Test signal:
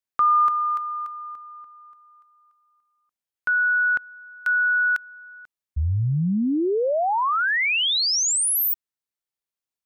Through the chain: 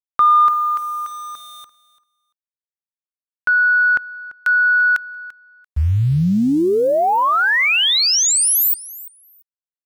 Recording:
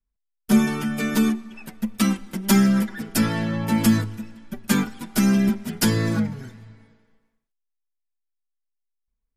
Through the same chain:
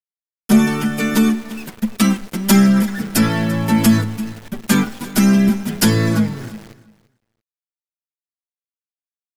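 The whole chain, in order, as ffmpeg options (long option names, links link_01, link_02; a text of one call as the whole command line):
ffmpeg -i in.wav -af "aeval=exprs='val(0)*gte(abs(val(0)),0.0106)':channel_layout=same,acontrast=61,aecho=1:1:341|682:0.119|0.019" out.wav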